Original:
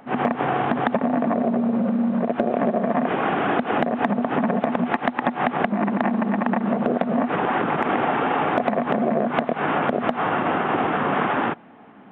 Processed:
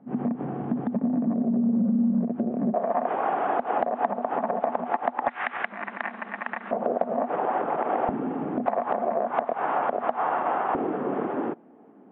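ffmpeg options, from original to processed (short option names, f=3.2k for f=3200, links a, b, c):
-af "asetnsamples=n=441:p=0,asendcmd='2.74 bandpass f 760;5.28 bandpass f 1900;6.71 bandpass f 640;8.09 bandpass f 240;8.66 bandpass f 820;10.75 bandpass f 370',bandpass=f=200:t=q:w=1.6:csg=0"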